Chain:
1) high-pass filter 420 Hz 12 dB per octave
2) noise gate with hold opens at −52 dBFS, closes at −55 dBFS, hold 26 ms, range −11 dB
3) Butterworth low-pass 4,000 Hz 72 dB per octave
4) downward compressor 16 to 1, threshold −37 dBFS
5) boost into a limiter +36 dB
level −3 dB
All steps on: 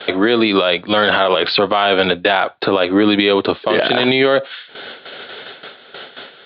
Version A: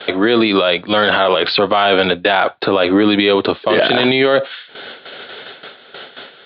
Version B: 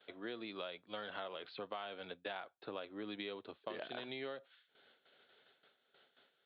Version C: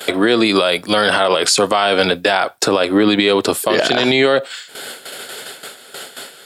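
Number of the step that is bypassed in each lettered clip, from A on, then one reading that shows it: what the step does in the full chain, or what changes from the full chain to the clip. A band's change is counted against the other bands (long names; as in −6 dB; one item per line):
4, average gain reduction 5.0 dB
5, change in crest factor +7.0 dB
3, change in momentary loudness spread −1 LU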